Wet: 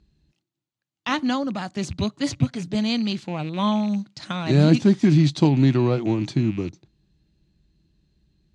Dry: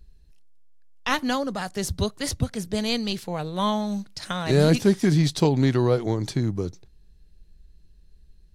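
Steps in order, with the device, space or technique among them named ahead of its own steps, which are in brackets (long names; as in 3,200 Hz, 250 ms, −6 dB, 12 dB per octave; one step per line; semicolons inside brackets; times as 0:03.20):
car door speaker with a rattle (loose part that buzzes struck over −32 dBFS, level −31 dBFS; loudspeaker in its box 90–6,800 Hz, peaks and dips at 140 Hz +5 dB, 220 Hz +5 dB, 320 Hz +7 dB, 450 Hz −8 dB, 1,700 Hz −3 dB, 5,400 Hz −6 dB)
0:02.11–0:02.75: comb filter 7.1 ms, depth 58%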